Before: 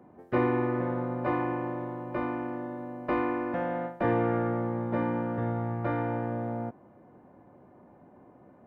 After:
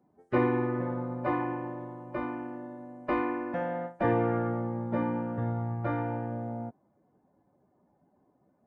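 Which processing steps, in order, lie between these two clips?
expander on every frequency bin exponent 1.5; resampled via 22.05 kHz; trim +1.5 dB

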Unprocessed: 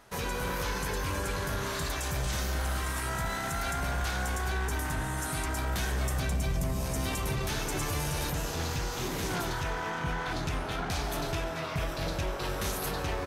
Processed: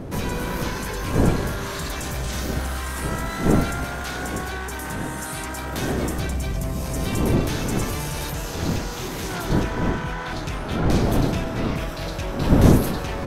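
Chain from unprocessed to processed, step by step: wind noise 280 Hz -28 dBFS; 3.85–6.18 s: bass shelf 95 Hz -9 dB; trim +3.5 dB

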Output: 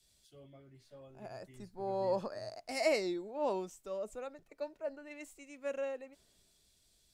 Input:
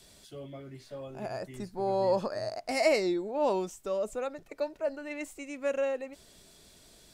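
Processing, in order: three bands expanded up and down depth 40%; trim -8 dB

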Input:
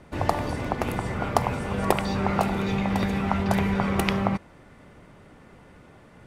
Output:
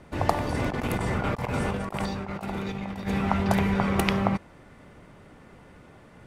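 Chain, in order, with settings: 0.54–3.08 s: compressor with a negative ratio -29 dBFS, ratio -0.5

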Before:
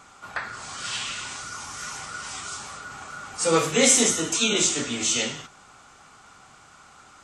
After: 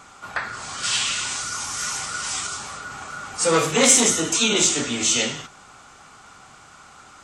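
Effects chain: 0.83–2.47 s: treble shelf 3.1 kHz +7 dB; transformer saturation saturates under 1.6 kHz; trim +4 dB

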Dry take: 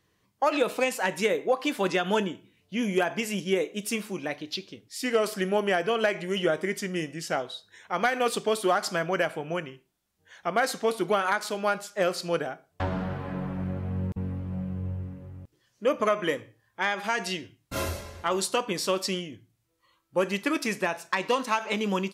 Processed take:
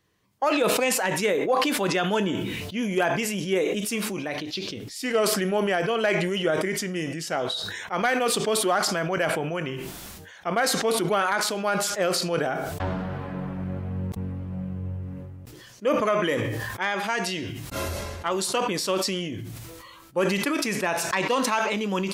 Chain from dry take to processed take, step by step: decay stretcher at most 25 dB/s

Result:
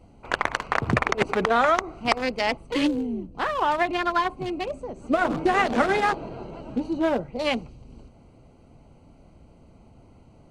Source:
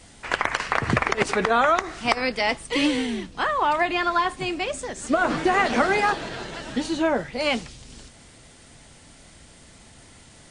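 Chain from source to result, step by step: local Wiener filter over 25 samples; 2.87–3.35 s: graphic EQ 1/2/4/8 kHz -7/-9/-7/-4 dB

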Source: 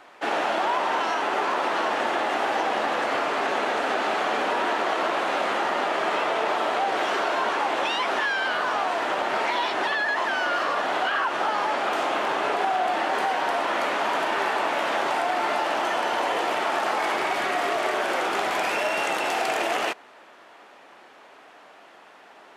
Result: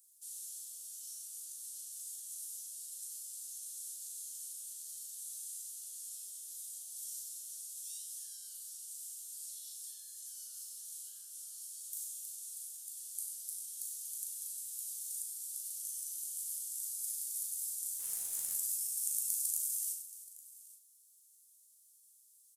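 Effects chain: inverse Chebyshev high-pass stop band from 2.4 kHz, stop band 70 dB; 17.99–18.54 s: companded quantiser 6-bit; doubling 38 ms -5 dB; multi-tap echo 95/310/826 ms -8.5/-15/-18.5 dB; reverberation RT60 0.65 s, pre-delay 6 ms, DRR 7 dB; trim +12.5 dB

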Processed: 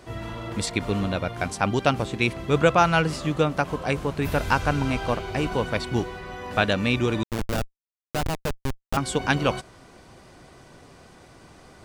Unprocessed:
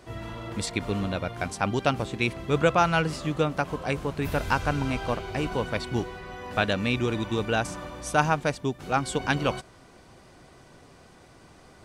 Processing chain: 7.23–8.97 s: Schmitt trigger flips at -20.5 dBFS; trim +3 dB

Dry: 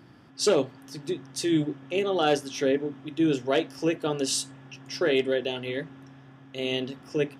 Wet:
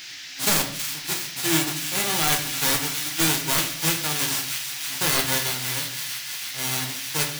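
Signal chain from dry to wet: formants flattened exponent 0.1; band noise 1.6–6.1 kHz -40 dBFS; integer overflow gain 10 dB; on a send: feedback echo behind a high-pass 324 ms, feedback 81%, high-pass 1.8 kHz, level -8.5 dB; on the sum: simulated room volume 87 m³, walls mixed, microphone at 0.52 m

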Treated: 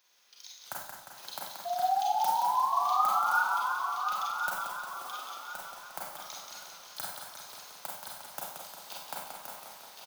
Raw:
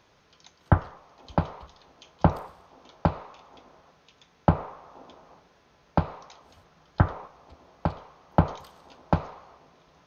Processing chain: block-companded coder 5-bit; differentiator; compression 5:1, threshold -58 dBFS, peak gain reduction 24 dB; transient shaper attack +6 dB, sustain -2 dB; level rider gain up to 11 dB; painted sound rise, 1.65–3.43 s, 690–1500 Hz -34 dBFS; on a send: feedback delay 1071 ms, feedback 29%, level -6 dB; on the sum: Schroeder reverb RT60 0.57 s, combs from 31 ms, DRR -3 dB; modulated delay 177 ms, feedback 68%, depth 91 cents, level -6 dB

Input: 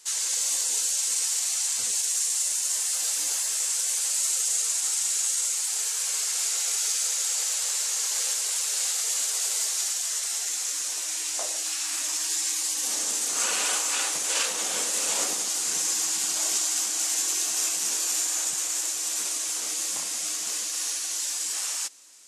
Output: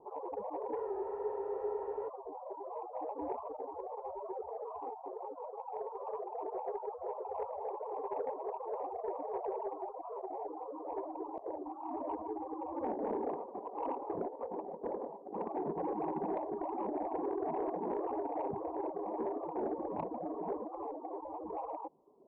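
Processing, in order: steep low-pass 970 Hz 72 dB/octave; hum notches 60/120/180 Hz; reverb removal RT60 0.92 s; high-pass 42 Hz; peaking EQ 400 Hz +9.5 dB 0.24 oct; compressor with a negative ratio -46 dBFS, ratio -0.5; saturation -37 dBFS, distortion -23 dB; spectral freeze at 0.78 s, 1.30 s; warped record 45 rpm, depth 100 cents; trim +11 dB

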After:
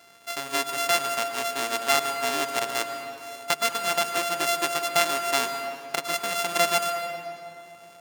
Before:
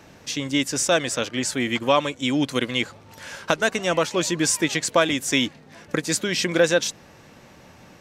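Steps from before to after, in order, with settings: sorted samples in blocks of 64 samples; high-pass 1.2 kHz 6 dB/octave; treble shelf 9.7 kHz -3.5 dB; on a send: reverberation RT60 2.8 s, pre-delay 104 ms, DRR 7 dB

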